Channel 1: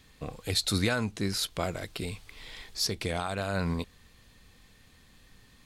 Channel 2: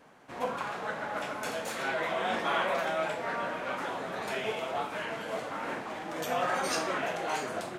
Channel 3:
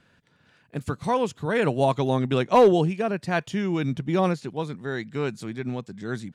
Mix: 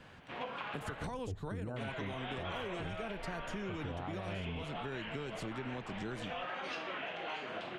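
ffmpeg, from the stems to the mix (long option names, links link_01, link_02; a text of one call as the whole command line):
ffmpeg -i stem1.wav -i stem2.wav -i stem3.wav -filter_complex "[0:a]lowpass=frequency=1100:width=0.5412,lowpass=frequency=1100:width=1.3066,adelay=800,volume=2.5dB[link_01];[1:a]lowpass=frequency=3000:width_type=q:width=3,volume=-3.5dB,asplit=3[link_02][link_03][link_04];[link_02]atrim=end=1.07,asetpts=PTS-STARTPTS,afade=type=out:start_time=1.066:duration=0.004:curve=hsin[link_05];[link_03]atrim=start=1.07:end=1.76,asetpts=PTS-STARTPTS,volume=0[link_06];[link_04]atrim=start=1.76,asetpts=PTS-STARTPTS,afade=type=in:duration=0.004:curve=hsin[link_07];[link_05][link_06][link_07]concat=n=3:v=0:a=1[link_08];[2:a]acrossover=split=320|1200|5800[link_09][link_10][link_11][link_12];[link_09]acompressor=threshold=-40dB:ratio=4[link_13];[link_10]acompressor=threshold=-35dB:ratio=4[link_14];[link_11]acompressor=threshold=-42dB:ratio=4[link_15];[link_12]acompressor=threshold=-52dB:ratio=4[link_16];[link_13][link_14][link_15][link_16]amix=inputs=4:normalize=0,volume=2dB[link_17];[link_01][link_17]amix=inputs=2:normalize=0,lowshelf=frequency=110:gain=8.5,alimiter=limit=-21.5dB:level=0:latency=1:release=31,volume=0dB[link_18];[link_08][link_18]amix=inputs=2:normalize=0,acompressor=threshold=-38dB:ratio=6" out.wav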